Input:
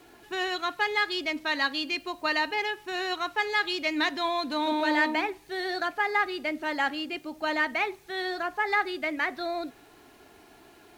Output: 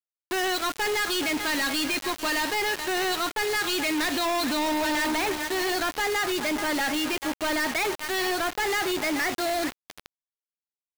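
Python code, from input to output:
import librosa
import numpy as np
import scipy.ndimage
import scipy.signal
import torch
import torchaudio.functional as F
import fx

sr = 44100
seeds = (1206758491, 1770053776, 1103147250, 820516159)

y = scipy.signal.sosfilt(scipy.signal.butter(16, 4900.0, 'lowpass', fs=sr, output='sos'), x)
y = fx.echo_feedback(y, sr, ms=430, feedback_pct=32, wet_db=-17)
y = fx.quant_companded(y, sr, bits=2)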